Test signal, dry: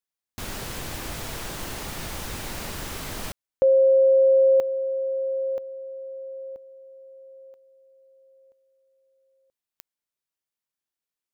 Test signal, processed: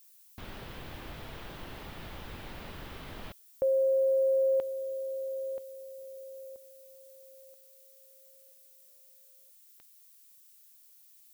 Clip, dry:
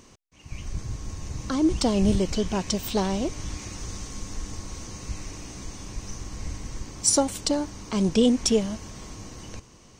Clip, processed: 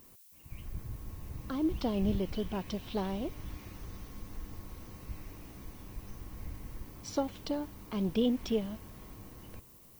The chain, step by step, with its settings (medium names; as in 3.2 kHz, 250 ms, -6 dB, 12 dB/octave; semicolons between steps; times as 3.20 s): distance through air 240 m; added noise violet -50 dBFS; dynamic bell 3.3 kHz, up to +4 dB, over -54 dBFS, Q 2.4; trim -8.5 dB